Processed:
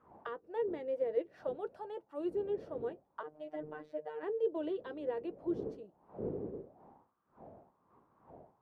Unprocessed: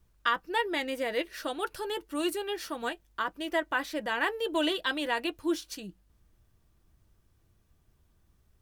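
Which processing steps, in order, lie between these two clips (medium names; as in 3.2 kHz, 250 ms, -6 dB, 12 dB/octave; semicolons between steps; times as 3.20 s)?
wind noise 190 Hz -35 dBFS; auto-wah 440–1300 Hz, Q 4.8, down, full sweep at -27 dBFS; 3.23–4.23 s: robot voice 152 Hz; trim +2 dB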